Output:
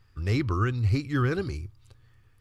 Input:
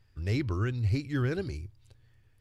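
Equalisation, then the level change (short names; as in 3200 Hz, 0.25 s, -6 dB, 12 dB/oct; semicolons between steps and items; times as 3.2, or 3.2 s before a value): bell 1200 Hz +9.5 dB 0.35 oct; notch 610 Hz, Q 12; +3.5 dB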